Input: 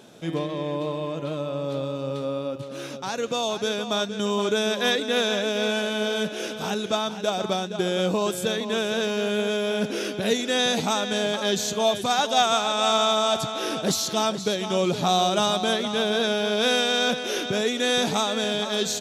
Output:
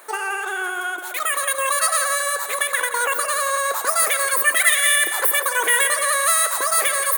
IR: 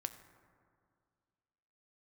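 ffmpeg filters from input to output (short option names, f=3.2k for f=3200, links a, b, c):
-filter_complex "[0:a]asetrate=116865,aresample=44100,asplit=2[a][b];[1:a]atrim=start_sample=2205,lowpass=2.5k[c];[b][c]afir=irnorm=-1:irlink=0,volume=10dB[d];[a][d]amix=inputs=2:normalize=0,crystalizer=i=7.5:c=0,volume=-12dB"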